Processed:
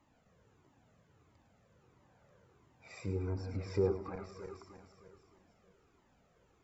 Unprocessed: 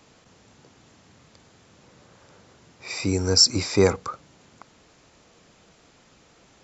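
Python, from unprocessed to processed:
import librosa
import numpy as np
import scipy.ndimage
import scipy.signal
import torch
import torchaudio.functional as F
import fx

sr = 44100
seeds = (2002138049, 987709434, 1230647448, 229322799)

y = fx.reverse_delay_fb(x, sr, ms=154, feedback_pct=70, wet_db=-9.0)
y = fx.peak_eq(y, sr, hz=5000.0, db=-13.0, octaves=2.0)
y = fx.env_lowpass_down(y, sr, base_hz=890.0, full_db=-17.5)
y = fx.echo_feedback(y, sr, ms=105, feedback_pct=38, wet_db=-10.5)
y = fx.comb_cascade(y, sr, direction='falling', hz=1.5)
y = y * librosa.db_to_amplitude(-8.5)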